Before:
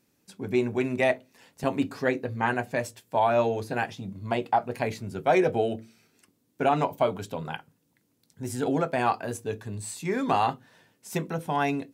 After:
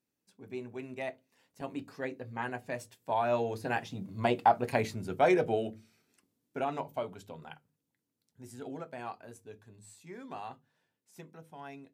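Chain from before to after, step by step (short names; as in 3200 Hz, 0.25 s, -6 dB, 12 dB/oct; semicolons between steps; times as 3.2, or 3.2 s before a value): Doppler pass-by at 4.54, 6 m/s, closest 4.1 m; notches 50/100/150/200 Hz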